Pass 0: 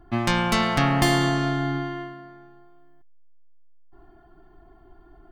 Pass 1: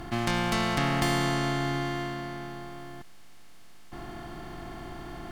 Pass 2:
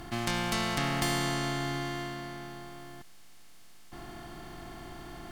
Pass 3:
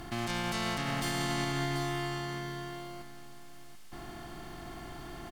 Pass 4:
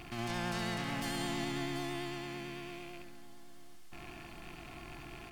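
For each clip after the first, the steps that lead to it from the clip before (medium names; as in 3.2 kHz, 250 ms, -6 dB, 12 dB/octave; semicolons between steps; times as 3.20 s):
spectral levelling over time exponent 0.4; trim -8.5 dB
treble shelf 3.5 kHz +7 dB; trim -4.5 dB
peak limiter -23.5 dBFS, peak gain reduction 9 dB; delay 737 ms -9.5 dB
rattle on loud lows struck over -48 dBFS, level -34 dBFS; flutter echo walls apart 11.7 m, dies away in 0.61 s; vibrato 9 Hz 33 cents; trim -6 dB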